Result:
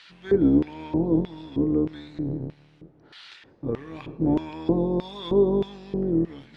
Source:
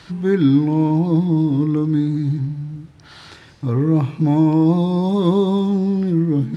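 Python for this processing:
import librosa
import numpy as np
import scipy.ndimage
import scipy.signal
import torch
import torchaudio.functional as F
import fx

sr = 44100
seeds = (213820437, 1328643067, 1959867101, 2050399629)

y = fx.octave_divider(x, sr, octaves=2, level_db=1.0)
y = fx.filter_lfo_bandpass(y, sr, shape='square', hz=1.6, low_hz=420.0, high_hz=2800.0, q=1.6)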